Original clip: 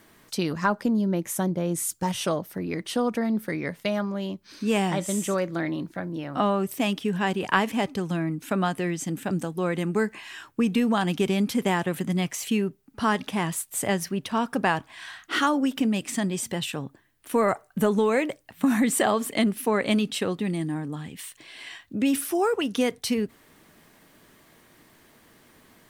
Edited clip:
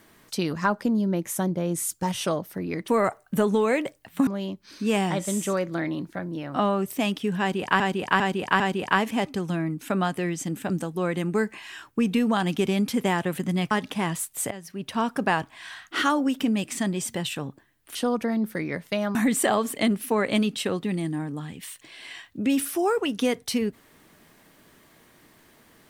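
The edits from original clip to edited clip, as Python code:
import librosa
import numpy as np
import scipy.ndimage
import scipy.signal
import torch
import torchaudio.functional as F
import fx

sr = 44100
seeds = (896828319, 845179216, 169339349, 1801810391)

y = fx.edit(x, sr, fx.swap(start_s=2.88, length_s=1.2, other_s=17.32, other_length_s=1.39),
    fx.repeat(start_s=7.21, length_s=0.4, count=4),
    fx.cut(start_s=12.32, length_s=0.76),
    fx.fade_in_from(start_s=13.88, length_s=0.41, curve='qua', floor_db=-16.0), tone=tone)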